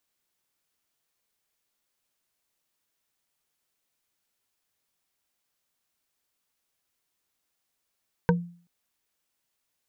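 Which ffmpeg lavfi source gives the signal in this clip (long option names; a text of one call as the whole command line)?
ffmpeg -f lavfi -i "aevalsrc='0.158*pow(10,-3*t/0.45)*sin(2*PI*173*t)+0.133*pow(10,-3*t/0.133)*sin(2*PI*477*t)+0.112*pow(10,-3*t/0.059)*sin(2*PI*934.9*t)+0.0944*pow(10,-3*t/0.033)*sin(2*PI*1545.4*t)':duration=0.38:sample_rate=44100" out.wav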